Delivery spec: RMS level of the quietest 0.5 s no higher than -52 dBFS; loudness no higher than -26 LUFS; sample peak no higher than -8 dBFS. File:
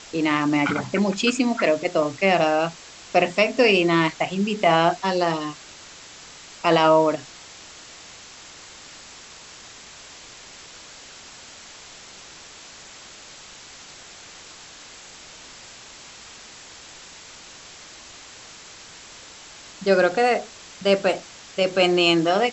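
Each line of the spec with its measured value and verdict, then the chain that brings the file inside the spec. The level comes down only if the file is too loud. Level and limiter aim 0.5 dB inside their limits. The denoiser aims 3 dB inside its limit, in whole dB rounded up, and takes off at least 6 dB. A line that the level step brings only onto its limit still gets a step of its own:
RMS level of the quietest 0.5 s -44 dBFS: fail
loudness -20.5 LUFS: fail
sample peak -5.5 dBFS: fail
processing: denoiser 6 dB, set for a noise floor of -44 dBFS; gain -6 dB

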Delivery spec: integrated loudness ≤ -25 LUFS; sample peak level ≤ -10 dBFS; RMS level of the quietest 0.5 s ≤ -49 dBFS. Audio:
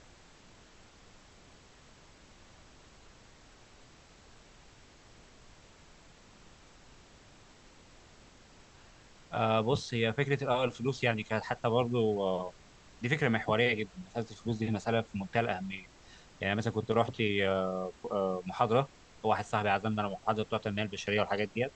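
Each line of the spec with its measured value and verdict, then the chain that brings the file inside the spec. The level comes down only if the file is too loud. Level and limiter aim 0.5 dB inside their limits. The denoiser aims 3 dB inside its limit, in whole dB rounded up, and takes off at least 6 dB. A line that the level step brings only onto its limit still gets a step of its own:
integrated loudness -32.0 LUFS: OK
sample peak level -12.5 dBFS: OK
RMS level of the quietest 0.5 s -57 dBFS: OK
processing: none

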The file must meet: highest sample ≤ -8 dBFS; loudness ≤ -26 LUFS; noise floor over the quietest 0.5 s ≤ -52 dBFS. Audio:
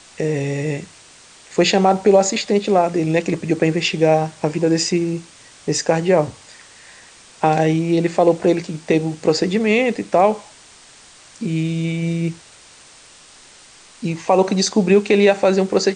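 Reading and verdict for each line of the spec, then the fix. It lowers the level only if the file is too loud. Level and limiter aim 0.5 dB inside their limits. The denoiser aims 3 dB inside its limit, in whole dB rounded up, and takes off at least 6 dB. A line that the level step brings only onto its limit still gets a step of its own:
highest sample -3.5 dBFS: fail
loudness -18.0 LUFS: fail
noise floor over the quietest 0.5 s -46 dBFS: fail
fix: gain -8.5 dB

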